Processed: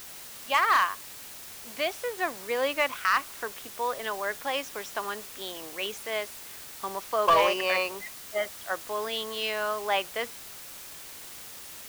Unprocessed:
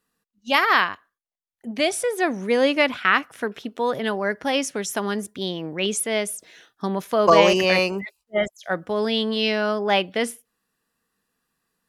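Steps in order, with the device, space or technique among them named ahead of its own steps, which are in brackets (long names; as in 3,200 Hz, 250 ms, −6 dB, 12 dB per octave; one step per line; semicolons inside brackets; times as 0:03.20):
drive-through speaker (band-pass filter 530–4,000 Hz; parametric band 1,100 Hz +7 dB 0.27 octaves; hard clipping −10 dBFS, distortion −15 dB; white noise bed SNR 13 dB)
level −5.5 dB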